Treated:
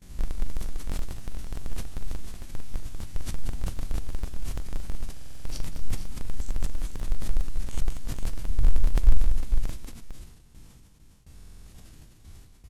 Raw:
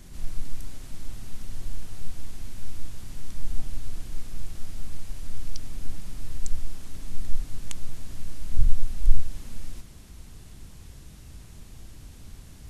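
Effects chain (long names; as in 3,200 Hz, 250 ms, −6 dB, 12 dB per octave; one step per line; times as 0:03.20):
spectrum averaged block by block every 100 ms
reverb reduction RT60 1.1 s
noise gate with hold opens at −40 dBFS
in parallel at −8 dB: comparator with hysteresis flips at −30.5 dBFS
on the sum: pitch vibrato 2.5 Hz 13 cents
on a send: multi-tap delay 42/191/277/452 ms −12/−6.5/−14/−6 dB
on the sum: buffer that repeats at 0:05.12/0:11.34, samples 2,048, times 6
level that may fall only so fast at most 96 dB per second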